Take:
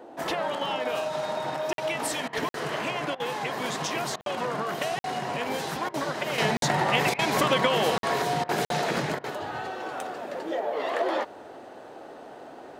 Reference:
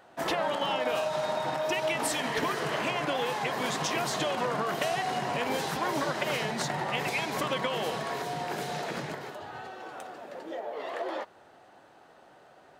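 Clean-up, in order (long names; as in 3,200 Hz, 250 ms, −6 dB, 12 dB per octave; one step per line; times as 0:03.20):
repair the gap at 0:01.73/0:02.49/0:04.21/0:04.99/0:06.57/0:07.98/0:08.65, 52 ms
repair the gap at 0:02.28/0:03.15/0:04.16/0:05.89/0:07.14/0:08.44/0:09.19, 48 ms
noise reduction from a noise print 11 dB
level 0 dB, from 0:06.38 −7.5 dB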